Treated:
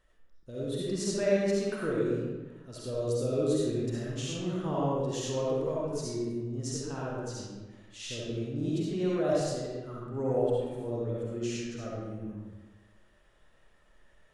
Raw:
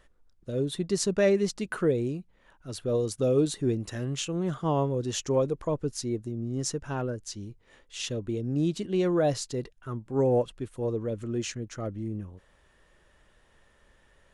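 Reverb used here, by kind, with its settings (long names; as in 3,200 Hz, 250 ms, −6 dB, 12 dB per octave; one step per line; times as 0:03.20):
comb and all-pass reverb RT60 1.3 s, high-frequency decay 0.7×, pre-delay 25 ms, DRR −6.5 dB
level −10 dB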